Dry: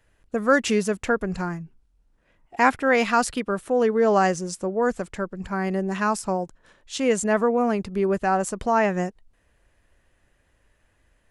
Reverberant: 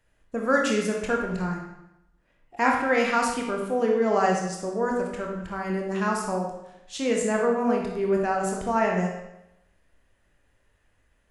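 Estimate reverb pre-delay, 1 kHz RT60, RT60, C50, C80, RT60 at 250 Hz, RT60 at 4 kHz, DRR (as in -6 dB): 21 ms, 0.90 s, 0.90 s, 2.5 dB, 5.5 dB, 0.85 s, 0.80 s, -0.5 dB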